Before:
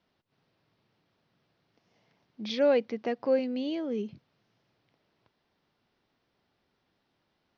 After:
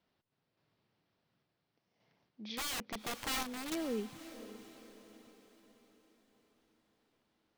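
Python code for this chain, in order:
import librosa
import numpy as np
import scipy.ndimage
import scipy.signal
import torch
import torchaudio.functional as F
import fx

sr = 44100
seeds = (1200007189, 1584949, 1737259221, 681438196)

y = fx.dynamic_eq(x, sr, hz=1500.0, q=0.93, threshold_db=-43.0, ratio=4.0, max_db=4)
y = fx.overflow_wrap(y, sr, gain_db=26.5, at=(2.56, 3.85))
y = fx.tremolo_random(y, sr, seeds[0], hz=3.5, depth_pct=55)
y = fx.echo_diffused(y, sr, ms=534, feedback_pct=48, wet_db=-13.0)
y = F.gain(torch.from_numpy(y), -4.0).numpy()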